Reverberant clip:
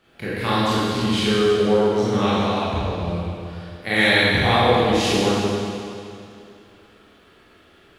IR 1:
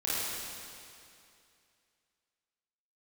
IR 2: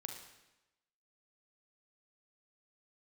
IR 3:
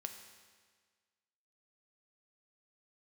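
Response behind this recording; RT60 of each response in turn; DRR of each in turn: 1; 2.5 s, 1.0 s, 1.6 s; -10.0 dB, 3.0 dB, 5.0 dB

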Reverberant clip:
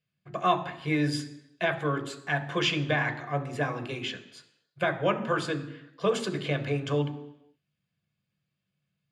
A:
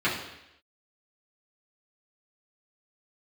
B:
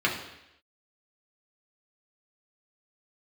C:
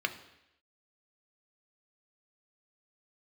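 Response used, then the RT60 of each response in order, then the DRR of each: C; 0.85 s, 0.85 s, 0.85 s; -10.0 dB, -3.5 dB, 6.5 dB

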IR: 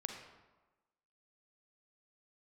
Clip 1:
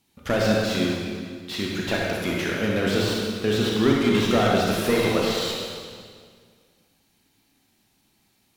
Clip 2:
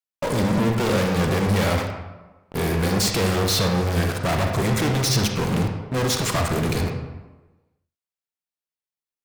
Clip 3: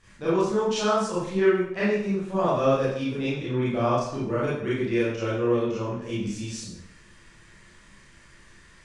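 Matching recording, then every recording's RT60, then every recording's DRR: 2; 2.0 s, 1.2 s, 0.70 s; -3.0 dB, 3.0 dB, -10.0 dB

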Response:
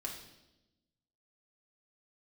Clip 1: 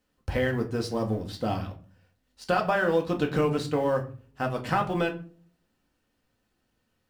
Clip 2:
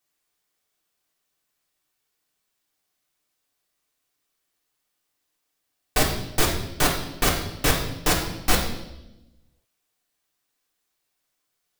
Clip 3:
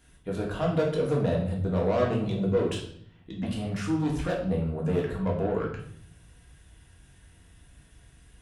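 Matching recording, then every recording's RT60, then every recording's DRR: 2; 0.40 s, 0.95 s, 0.60 s; 2.0 dB, -1.5 dB, -2.5 dB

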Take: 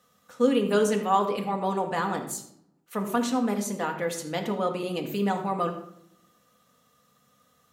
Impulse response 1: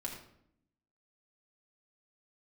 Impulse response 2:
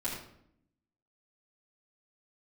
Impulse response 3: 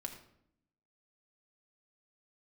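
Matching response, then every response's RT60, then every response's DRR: 3; 0.70 s, 0.70 s, 0.70 s; -2.0 dB, -9.0 dB, 3.0 dB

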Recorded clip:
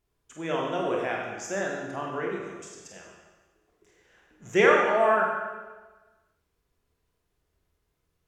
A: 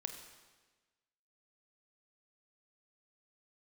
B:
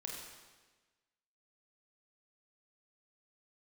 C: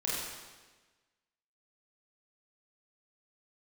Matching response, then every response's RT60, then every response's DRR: B; 1.3 s, 1.3 s, 1.3 s; 5.0 dB, -2.0 dB, -7.0 dB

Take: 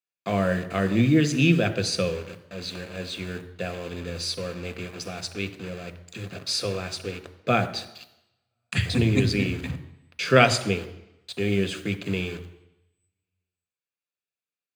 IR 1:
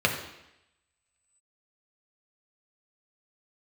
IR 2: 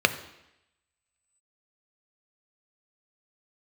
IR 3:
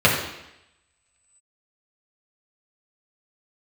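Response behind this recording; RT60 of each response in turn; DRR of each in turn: 2; 0.85 s, 0.85 s, 0.85 s; 1.0 dB, 9.5 dB, -5.0 dB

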